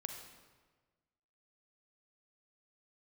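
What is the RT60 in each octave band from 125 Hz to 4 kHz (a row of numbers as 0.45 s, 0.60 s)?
1.6 s, 1.5 s, 1.5 s, 1.3 s, 1.2 s, 1.0 s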